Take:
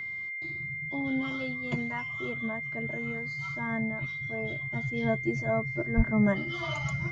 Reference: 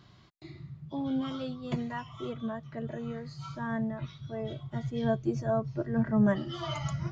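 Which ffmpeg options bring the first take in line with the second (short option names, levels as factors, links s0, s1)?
-filter_complex "[0:a]bandreject=f=2100:w=30,asplit=3[s0][s1][s2];[s0]afade=t=out:st=5.96:d=0.02[s3];[s1]highpass=f=140:w=0.5412,highpass=f=140:w=1.3066,afade=t=in:st=5.96:d=0.02,afade=t=out:st=6.08:d=0.02[s4];[s2]afade=t=in:st=6.08:d=0.02[s5];[s3][s4][s5]amix=inputs=3:normalize=0"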